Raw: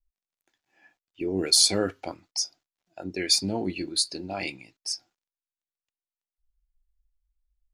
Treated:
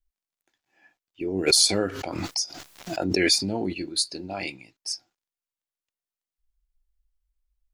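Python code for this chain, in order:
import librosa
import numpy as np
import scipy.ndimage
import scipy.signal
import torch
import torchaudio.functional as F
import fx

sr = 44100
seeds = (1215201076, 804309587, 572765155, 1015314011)

y = fx.pre_swell(x, sr, db_per_s=30.0, at=(1.46, 3.72), fade=0.02)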